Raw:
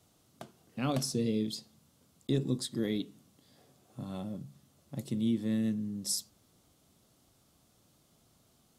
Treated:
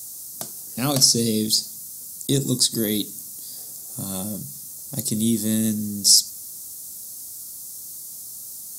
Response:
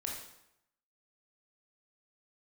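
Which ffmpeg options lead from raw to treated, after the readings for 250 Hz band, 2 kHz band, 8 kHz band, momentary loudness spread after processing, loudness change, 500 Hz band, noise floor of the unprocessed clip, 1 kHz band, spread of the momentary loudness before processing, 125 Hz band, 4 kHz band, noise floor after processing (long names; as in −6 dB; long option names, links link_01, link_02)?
+8.0 dB, +8.0 dB, +21.0 dB, 18 LU, +13.0 dB, +8.0 dB, −68 dBFS, +8.0 dB, 16 LU, +8.0 dB, +20.0 dB, −38 dBFS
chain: -filter_complex "[0:a]aexciter=amount=6.6:drive=8.6:freq=4500,acrossover=split=4900[link_01][link_02];[link_02]acompressor=threshold=-36dB:ratio=4:attack=1:release=60[link_03];[link_01][link_03]amix=inputs=2:normalize=0,highshelf=frequency=6700:gain=7.5,volume=8dB"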